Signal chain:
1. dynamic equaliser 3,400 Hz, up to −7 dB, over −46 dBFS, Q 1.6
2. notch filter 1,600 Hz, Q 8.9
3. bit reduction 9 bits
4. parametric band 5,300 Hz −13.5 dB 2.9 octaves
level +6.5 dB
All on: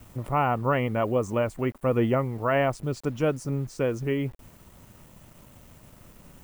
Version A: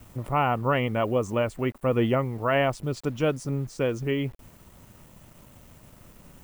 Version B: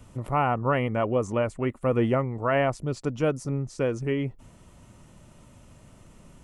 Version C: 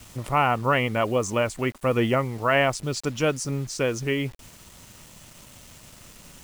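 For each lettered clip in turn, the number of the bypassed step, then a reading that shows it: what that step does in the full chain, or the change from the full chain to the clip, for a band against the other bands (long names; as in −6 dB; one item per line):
1, 4 kHz band +5.0 dB
3, distortion level −26 dB
4, 8 kHz band +10.0 dB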